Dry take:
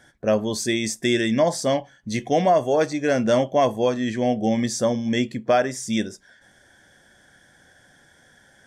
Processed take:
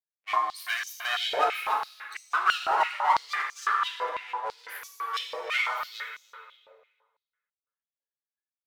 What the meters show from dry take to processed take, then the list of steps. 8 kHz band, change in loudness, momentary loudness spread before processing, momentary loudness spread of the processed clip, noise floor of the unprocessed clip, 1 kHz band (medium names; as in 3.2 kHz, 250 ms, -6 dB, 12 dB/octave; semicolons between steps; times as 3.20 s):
-13.5 dB, -6.0 dB, 7 LU, 13 LU, -56 dBFS, 0.0 dB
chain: expander on every frequency bin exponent 3; treble shelf 4.2 kHz -10 dB; full-wave rectifier; speakerphone echo 300 ms, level -8 dB; plate-style reverb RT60 1.6 s, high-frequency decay 0.85×, DRR -0.5 dB; step-sequenced high-pass 6 Hz 660–6200 Hz